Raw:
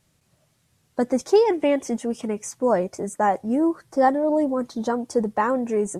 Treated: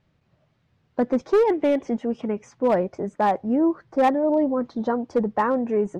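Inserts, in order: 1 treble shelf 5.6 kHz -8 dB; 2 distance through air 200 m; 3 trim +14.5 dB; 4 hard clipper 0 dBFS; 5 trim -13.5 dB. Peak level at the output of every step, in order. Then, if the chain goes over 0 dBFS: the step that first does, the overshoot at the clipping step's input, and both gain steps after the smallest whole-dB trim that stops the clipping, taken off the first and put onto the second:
-7.0 dBFS, -7.5 dBFS, +7.0 dBFS, 0.0 dBFS, -13.5 dBFS; step 3, 7.0 dB; step 3 +7.5 dB, step 5 -6.5 dB

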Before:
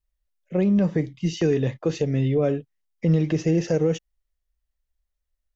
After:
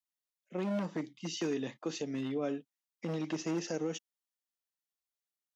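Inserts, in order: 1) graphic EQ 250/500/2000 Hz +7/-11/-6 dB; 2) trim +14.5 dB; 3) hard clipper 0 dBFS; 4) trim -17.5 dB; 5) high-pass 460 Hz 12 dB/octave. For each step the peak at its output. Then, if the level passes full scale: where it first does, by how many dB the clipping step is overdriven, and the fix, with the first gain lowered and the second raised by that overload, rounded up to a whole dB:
-10.0 dBFS, +4.5 dBFS, 0.0 dBFS, -17.5 dBFS, -23.5 dBFS; step 2, 4.5 dB; step 2 +9.5 dB, step 4 -12.5 dB

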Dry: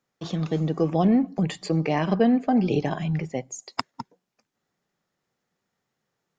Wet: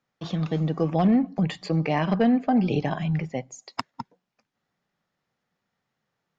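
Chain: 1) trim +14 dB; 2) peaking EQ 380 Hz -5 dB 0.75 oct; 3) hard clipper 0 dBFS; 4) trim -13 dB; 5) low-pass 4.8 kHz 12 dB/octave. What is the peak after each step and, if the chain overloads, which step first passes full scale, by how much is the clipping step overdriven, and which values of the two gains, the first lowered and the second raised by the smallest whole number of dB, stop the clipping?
+8.0 dBFS, +7.5 dBFS, 0.0 dBFS, -13.0 dBFS, -12.5 dBFS; step 1, 7.5 dB; step 1 +6 dB, step 4 -5 dB

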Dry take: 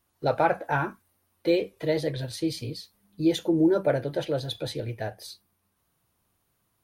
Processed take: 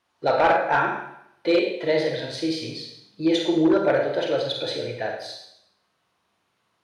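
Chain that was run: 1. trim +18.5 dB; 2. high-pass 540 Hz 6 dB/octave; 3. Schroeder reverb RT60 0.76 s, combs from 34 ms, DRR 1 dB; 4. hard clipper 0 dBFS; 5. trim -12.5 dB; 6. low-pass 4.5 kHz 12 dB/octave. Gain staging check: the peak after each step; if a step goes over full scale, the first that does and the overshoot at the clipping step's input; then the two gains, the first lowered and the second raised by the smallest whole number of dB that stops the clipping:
+8.5 dBFS, +7.5 dBFS, +7.5 dBFS, 0.0 dBFS, -12.5 dBFS, -12.0 dBFS; step 1, 7.5 dB; step 1 +10.5 dB, step 5 -4.5 dB

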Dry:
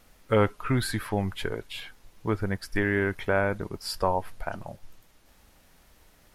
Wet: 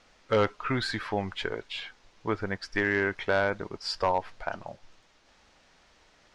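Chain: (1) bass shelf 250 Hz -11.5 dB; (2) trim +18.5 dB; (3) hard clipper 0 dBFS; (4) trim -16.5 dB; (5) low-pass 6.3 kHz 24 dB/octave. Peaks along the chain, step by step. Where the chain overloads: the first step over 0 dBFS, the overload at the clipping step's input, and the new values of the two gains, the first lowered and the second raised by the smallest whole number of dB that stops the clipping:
-11.0 dBFS, +7.5 dBFS, 0.0 dBFS, -16.5 dBFS, -15.5 dBFS; step 2, 7.5 dB; step 2 +10.5 dB, step 4 -8.5 dB

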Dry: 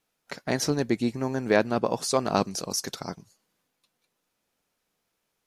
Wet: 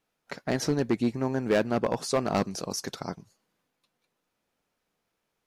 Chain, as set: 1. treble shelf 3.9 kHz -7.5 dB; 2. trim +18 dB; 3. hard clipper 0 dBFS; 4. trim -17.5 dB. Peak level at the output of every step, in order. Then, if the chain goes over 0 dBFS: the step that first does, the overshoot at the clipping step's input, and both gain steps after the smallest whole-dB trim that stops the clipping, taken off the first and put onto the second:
-8.5 dBFS, +9.5 dBFS, 0.0 dBFS, -17.5 dBFS; step 2, 9.5 dB; step 2 +8 dB, step 4 -7.5 dB

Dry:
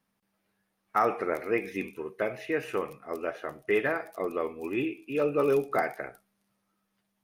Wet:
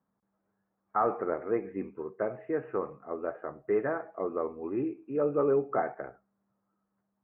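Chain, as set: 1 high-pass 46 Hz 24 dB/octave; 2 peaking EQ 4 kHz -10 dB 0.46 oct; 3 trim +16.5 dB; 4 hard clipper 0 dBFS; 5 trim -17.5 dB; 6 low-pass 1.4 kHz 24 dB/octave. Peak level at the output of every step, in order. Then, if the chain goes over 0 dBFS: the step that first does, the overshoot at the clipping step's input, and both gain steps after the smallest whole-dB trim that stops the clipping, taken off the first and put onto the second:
-13.0 dBFS, -13.0 dBFS, +3.5 dBFS, 0.0 dBFS, -17.5 dBFS, -16.5 dBFS; step 3, 3.5 dB; step 3 +12.5 dB, step 5 -13.5 dB

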